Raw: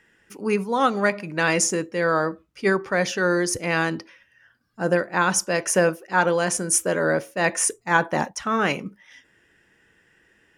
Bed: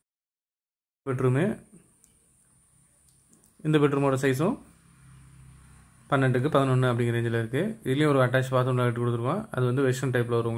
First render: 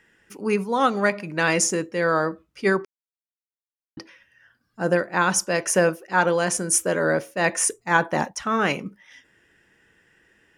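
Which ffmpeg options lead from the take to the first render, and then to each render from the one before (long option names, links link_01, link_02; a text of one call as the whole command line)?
ffmpeg -i in.wav -filter_complex "[0:a]asplit=3[link_01][link_02][link_03];[link_01]atrim=end=2.85,asetpts=PTS-STARTPTS,afade=type=out:start_time=2.846:duration=0.004:curve=hsin[link_04];[link_02]atrim=start=2.85:end=3.97,asetpts=PTS-STARTPTS,volume=0[link_05];[link_03]atrim=start=3.97,asetpts=PTS-STARTPTS,afade=type=in:duration=0.004:curve=hsin[link_06];[link_04][link_05][link_06]concat=n=3:v=0:a=1" out.wav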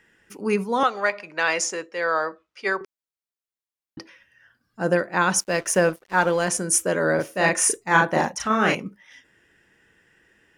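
ffmpeg -i in.wav -filter_complex "[0:a]asettb=1/sr,asplit=3[link_01][link_02][link_03];[link_01]atrim=end=0.834[link_04];[link_02]atrim=start=0.83:end=2.81,asetpts=PTS-STARTPTS,afade=type=in:duration=0.004:curve=qsin,afade=type=out:start_time=1.976:duration=0.004:curve=qsin,acrossover=split=450 7200:gain=0.112 1 0.158[link_05][link_06][link_07];[link_05][link_06][link_07]amix=inputs=3:normalize=0[link_08];[link_03]atrim=start=2.806[link_09];[link_04][link_08]acrossfade=duration=0.004:curve1=hsin:curve2=qsin[link_10];[link_10][link_09]acrossfade=duration=0.004:curve1=qsin:curve2=hsin,asettb=1/sr,asplit=3[link_11][link_12][link_13];[link_11]atrim=end=5.404[link_14];[link_12]atrim=start=5.4:end=6.48,asetpts=PTS-STARTPTS,afade=type=in:duration=0.004:curve=qsin,afade=type=out:start_time=1.076:duration=0.004:curve=qsin,aeval=exprs='sgn(val(0))*max(abs(val(0))-0.00708,0)':channel_layout=same[link_15];[link_13]atrim=start=6.476[link_16];[link_14][link_15]acrossfade=duration=0.004:curve1=hsin:curve2=qsin[link_17];[link_17][link_16]acrossfade=duration=0.004:curve1=qsin:curve2=hsin,asettb=1/sr,asplit=3[link_18][link_19][link_20];[link_18]atrim=end=7.154[link_21];[link_19]atrim=start=7.15:end=8.75,asetpts=PTS-STARTPTS,afade=type=in:duration=0.004:curve=qsin,afade=type=out:start_time=1.596:duration=0.004:curve=qsin,asplit=2[link_22][link_23];[link_23]adelay=37,volume=-2dB[link_24];[link_22][link_24]amix=inputs=2:normalize=0,atrim=end_sample=70560[link_25];[link_20]atrim=start=8.746[link_26];[link_21][link_25]acrossfade=duration=0.004:curve1=hsin:curve2=qsin[link_27];[link_27][link_26]acrossfade=duration=0.004:curve1=qsin:curve2=hsin" out.wav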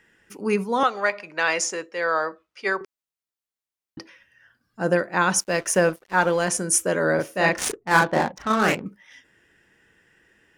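ffmpeg -i in.wav -filter_complex "[0:a]asettb=1/sr,asplit=3[link_01][link_02][link_03];[link_01]atrim=end=7.524[link_04];[link_02]atrim=start=7.52:end=8.86,asetpts=PTS-STARTPTS,afade=type=in:duration=0.004:curve=qsin,afade=type=out:start_time=1.336:duration=0.004:curve=qsin,adynamicsmooth=sensitivity=3:basefreq=600[link_05];[link_03]atrim=start=8.856[link_06];[link_04][link_05]acrossfade=duration=0.004:curve1=hsin:curve2=qsin[link_07];[link_07][link_06]acrossfade=duration=0.004:curve1=qsin:curve2=hsin" out.wav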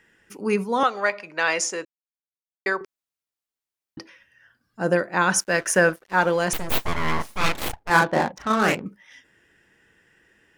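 ffmpeg -i in.wav -filter_complex "[0:a]asettb=1/sr,asplit=3[link_01][link_02][link_03];[link_01]atrim=end=5.294[link_04];[link_02]atrim=start=5.29:end=6.03,asetpts=PTS-STARTPTS,afade=type=in:duration=0.004:curve=qsin,afade=type=out:start_time=0.736:duration=0.004:curve=qsin,equalizer=frequency=1600:width_type=o:width=0.44:gain=8[link_05];[link_03]atrim=start=6.026[link_06];[link_04][link_05]acrossfade=duration=0.004:curve1=hsin:curve2=qsin[link_07];[link_07][link_06]acrossfade=duration=0.004:curve1=qsin:curve2=hsin,asettb=1/sr,asplit=3[link_08][link_09][link_10];[link_08]atrim=end=6.534[link_11];[link_09]atrim=start=6.53:end=7.9,asetpts=PTS-STARTPTS,afade=type=in:duration=0.004:curve=qsin,afade=type=out:start_time=1.366:duration=0.004:curve=qsin,aeval=exprs='abs(val(0))':channel_layout=same[link_12];[link_10]atrim=start=7.896[link_13];[link_11][link_12]acrossfade=duration=0.004:curve1=hsin:curve2=qsin[link_14];[link_14][link_13]acrossfade=duration=0.004:curve1=qsin:curve2=hsin,asplit=3[link_15][link_16][link_17];[link_15]atrim=end=1.85,asetpts=PTS-STARTPTS,afade=type=out:start_time=1.846:duration=0.004:curve=hsin[link_18];[link_16]atrim=start=1.85:end=2.66,asetpts=PTS-STARTPTS,volume=0[link_19];[link_17]atrim=start=2.66,asetpts=PTS-STARTPTS,afade=type=in:duration=0.004:curve=hsin[link_20];[link_18][link_19][link_20]concat=n=3:v=0:a=1" out.wav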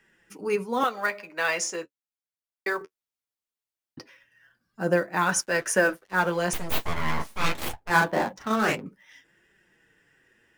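ffmpeg -i in.wav -filter_complex "[0:a]flanger=delay=5:depth=9:regen=-29:speed=0.21:shape=triangular,acrossover=split=380|810|7300[link_01][link_02][link_03][link_04];[link_03]acrusher=bits=5:mode=log:mix=0:aa=0.000001[link_05];[link_01][link_02][link_05][link_04]amix=inputs=4:normalize=0" out.wav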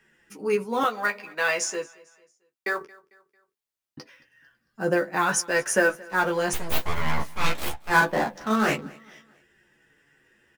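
ffmpeg -i in.wav -filter_complex "[0:a]asplit=2[link_01][link_02];[link_02]adelay=14,volume=-5.5dB[link_03];[link_01][link_03]amix=inputs=2:normalize=0,aecho=1:1:224|448|672:0.0668|0.0287|0.0124" out.wav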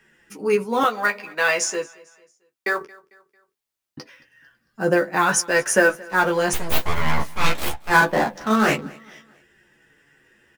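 ffmpeg -i in.wav -af "volume=4.5dB,alimiter=limit=-3dB:level=0:latency=1" out.wav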